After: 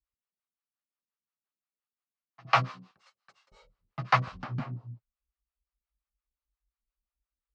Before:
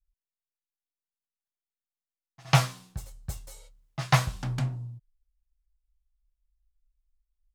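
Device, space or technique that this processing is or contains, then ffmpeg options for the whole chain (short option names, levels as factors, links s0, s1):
guitar amplifier with harmonic tremolo: -filter_complex "[0:a]acrossover=split=440[s0][s1];[s0]aeval=exprs='val(0)*(1-1/2+1/2*cos(2*PI*5.7*n/s))':c=same[s2];[s1]aeval=exprs='val(0)*(1-1/2-1/2*cos(2*PI*5.7*n/s))':c=same[s3];[s2][s3]amix=inputs=2:normalize=0,asoftclip=type=tanh:threshold=0.158,highpass=78,equalizer=f=130:t=q:w=4:g=-3,equalizer=f=210:t=q:w=4:g=8,equalizer=f=1200:t=q:w=4:g=8,equalizer=f=3500:t=q:w=4:g=-7,lowpass=f=4200:w=0.5412,lowpass=f=4200:w=1.3066,asettb=1/sr,asplit=3[s4][s5][s6];[s4]atrim=end=2.914[s7];[s5]atrim=start=2.91:end=3.52,asetpts=PTS-STARTPTS,afade=t=in:d=0.004:c=qsin,afade=t=out:st=0.606:d=0.004:c=qsin,highpass=1300[s8];[s6]atrim=start=3.516[s9];[s7][s8]acrossfade=d=0.004:c1=hsin:c2=qsin[s10];[s10][s9]acrossfade=d=0.004:c1=qsin:c2=hsin,volume=1.41"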